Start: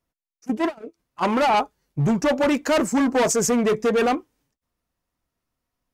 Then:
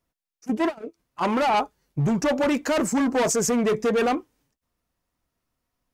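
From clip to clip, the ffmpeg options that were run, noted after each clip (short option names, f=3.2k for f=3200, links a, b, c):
-af "alimiter=limit=-19dB:level=0:latency=1:release=26,volume=1.5dB"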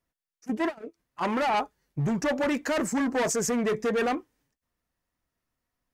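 -af "equalizer=f=1.8k:w=3.4:g=5,volume=-4.5dB"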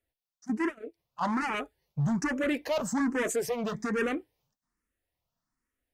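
-filter_complex "[0:a]asplit=2[a][b];[b]afreqshift=1.2[c];[a][c]amix=inputs=2:normalize=1"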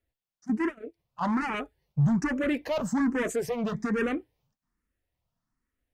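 -af "bass=f=250:g=6,treble=f=4k:g=-5"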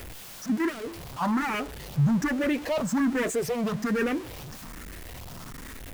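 -af "aeval=exprs='val(0)+0.5*0.02*sgn(val(0))':c=same"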